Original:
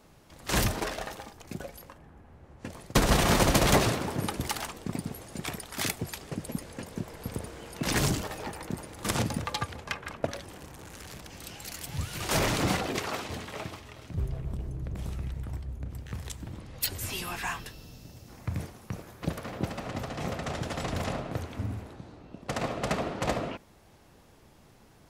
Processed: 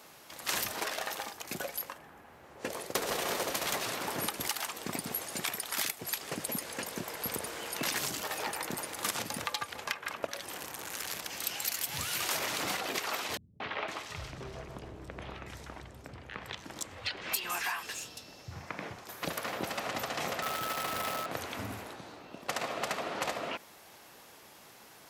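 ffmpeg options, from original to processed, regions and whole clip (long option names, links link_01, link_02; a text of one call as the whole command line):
ffmpeg -i in.wav -filter_complex "[0:a]asettb=1/sr,asplit=3[link_01][link_02][link_03];[link_01]atrim=end=2.554[link_04];[link_02]atrim=start=2.55:end=3.53,asetpts=PTS-STARTPTS,afade=type=in:duration=0.004:curve=qsin,afade=type=out:start_time=0.976:duration=0.004:curve=qsin,equalizer=frequency=450:width_type=o:width=0.96:gain=9,asoftclip=type=hard:threshold=-12dB[link_05];[link_03]atrim=start=3.526[link_06];[link_04][link_05]acrossfade=duration=0.004:curve1=hsin:curve2=qsin[link_07];[link_07][link_06]acrossfade=duration=0.004:curve1=qsin:curve2=hsin,asettb=1/sr,asplit=3[link_08][link_09][link_10];[link_08]atrim=end=13.374[link_11];[link_09]atrim=start=13.37:end=19.09,asetpts=PTS-STARTPTS,afade=type=in:duration=0.004:curve=qsin,afade=type=out:start_time=5.716:duration=0.004:curve=qsin,adynamicsmooth=sensitivity=6.5:basefreq=5300,acrossover=split=160|4000[link_12][link_13][link_14];[link_13]adelay=230[link_15];[link_14]adelay=510[link_16];[link_12][link_15][link_16]amix=inputs=3:normalize=0,atrim=end_sample=252252[link_17];[link_10]atrim=start=19.086[link_18];[link_11][link_17]acrossfade=duration=0.004:curve1=hsin:curve2=qsin[link_19];[link_19][link_18]acrossfade=duration=0.004:curve1=qsin:curve2=hsin,asettb=1/sr,asplit=3[link_20][link_21][link_22];[link_20]atrim=end=20.424[link_23];[link_21]atrim=start=20.42:end=21.26,asetpts=PTS-STARTPTS,afade=type=in:duration=0.004:curve=qsin,afade=type=out:start_time=0.836:duration=0.004:curve=qsin,equalizer=frequency=6800:width=2.1:gain=-13.5,acrusher=bits=7:dc=4:mix=0:aa=0.000001,aeval=exprs='val(0)+0.0141*sin(2*PI*1300*n/s)':channel_layout=same[link_24];[link_22]atrim=start=21.256[link_25];[link_23][link_24]acrossfade=duration=0.004:curve1=hsin:curve2=qsin[link_26];[link_26][link_25]acrossfade=duration=0.004:curve1=qsin:curve2=hsin,highpass=frequency=1000:poles=1,acompressor=threshold=-40dB:ratio=8,equalizer=frequency=12000:width=7.8:gain=9.5,volume=9dB" out.wav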